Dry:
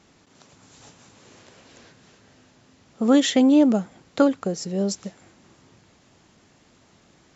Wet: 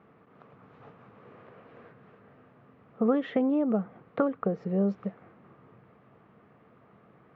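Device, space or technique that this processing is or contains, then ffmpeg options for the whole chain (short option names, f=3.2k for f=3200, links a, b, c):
bass amplifier: -af "acompressor=threshold=-23dB:ratio=3,highpass=77,equalizer=f=130:t=q:w=4:g=8,equalizer=f=200:t=q:w=4:g=6,equalizer=f=460:t=q:w=4:g=10,equalizer=f=690:t=q:w=4:g=5,equalizer=f=1.2k:t=q:w=4:g=10,lowpass=f=2.3k:w=0.5412,lowpass=f=2.3k:w=1.3066,volume=-5dB"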